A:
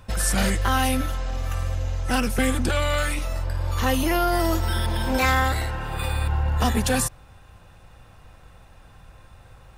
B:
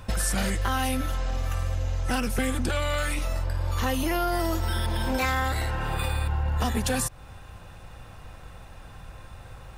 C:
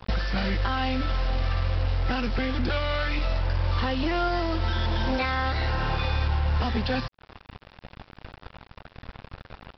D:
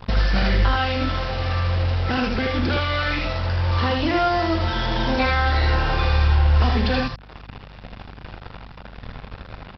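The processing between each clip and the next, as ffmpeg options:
-af "acompressor=threshold=-30dB:ratio=3,volume=4.5dB"
-af "alimiter=limit=-18.5dB:level=0:latency=1:release=187,aresample=11025,acrusher=bits=5:mix=0:aa=0.5,aresample=44100,volume=2.5dB"
-filter_complex "[0:a]aeval=exprs='val(0)+0.00251*(sin(2*PI*50*n/s)+sin(2*PI*2*50*n/s)/2+sin(2*PI*3*50*n/s)/3+sin(2*PI*4*50*n/s)/4+sin(2*PI*5*50*n/s)/5)':c=same,asplit=2[a][b];[b]aecho=0:1:40|79:0.282|0.668[c];[a][c]amix=inputs=2:normalize=0,volume=4dB"

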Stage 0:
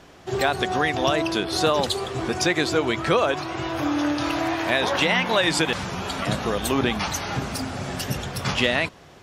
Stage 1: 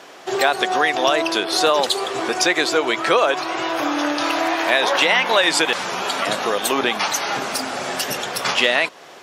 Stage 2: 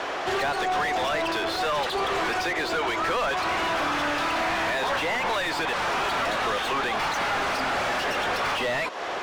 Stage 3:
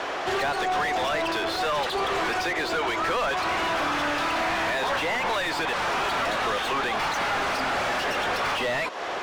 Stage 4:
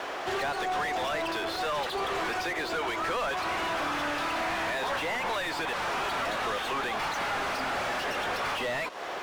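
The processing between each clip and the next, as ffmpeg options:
-filter_complex "[0:a]highpass=420,asplit=2[a][b];[b]acompressor=threshold=-31dB:ratio=6,volume=-1dB[c];[a][c]amix=inputs=2:normalize=0,volume=3.5dB"
-filter_complex "[0:a]highshelf=f=9k:g=-5.5,acrossover=split=1200|4600[a][b][c];[a]acompressor=threshold=-31dB:ratio=4[d];[b]acompressor=threshold=-29dB:ratio=4[e];[c]acompressor=threshold=-42dB:ratio=4[f];[d][e][f]amix=inputs=3:normalize=0,asplit=2[g][h];[h]highpass=f=720:p=1,volume=32dB,asoftclip=type=tanh:threshold=-8.5dB[i];[g][i]amix=inputs=2:normalize=0,lowpass=f=1.5k:p=1,volume=-6dB,volume=-7.5dB"
-af anull
-af "aeval=exprs='sgn(val(0))*max(abs(val(0))-0.00447,0)':c=same,volume=-4dB"

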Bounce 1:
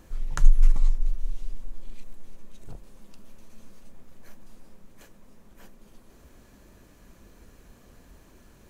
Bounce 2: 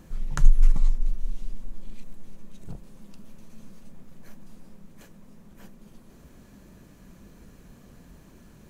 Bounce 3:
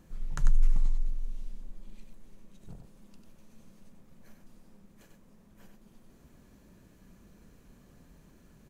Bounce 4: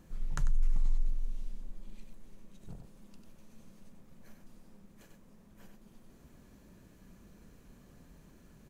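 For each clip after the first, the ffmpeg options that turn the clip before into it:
-af "equalizer=f=170:t=o:w=1.1:g=9"
-af "aecho=1:1:95:0.531,volume=-8dB"
-af "alimiter=limit=-19.5dB:level=0:latency=1:release=87"

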